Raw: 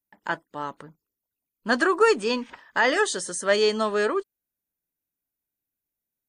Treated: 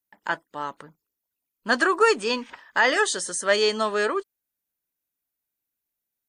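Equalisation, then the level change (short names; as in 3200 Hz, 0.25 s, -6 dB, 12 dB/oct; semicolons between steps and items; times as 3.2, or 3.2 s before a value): low shelf 490 Hz -6.5 dB; +2.5 dB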